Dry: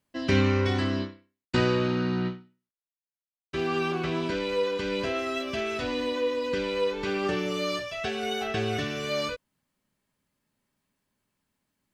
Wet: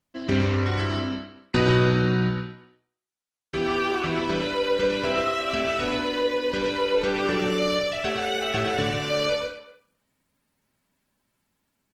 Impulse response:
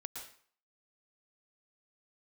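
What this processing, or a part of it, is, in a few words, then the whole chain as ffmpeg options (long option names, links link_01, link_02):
speakerphone in a meeting room: -filter_complex "[1:a]atrim=start_sample=2205[link_01];[0:a][link_01]afir=irnorm=-1:irlink=0,asplit=2[link_02][link_03];[link_03]adelay=240,highpass=300,lowpass=3400,asoftclip=type=hard:threshold=-24dB,volume=-17dB[link_04];[link_02][link_04]amix=inputs=2:normalize=0,dynaudnorm=framelen=690:gausssize=3:maxgain=3.5dB,volume=4dB" -ar 48000 -c:a libopus -b:a 16k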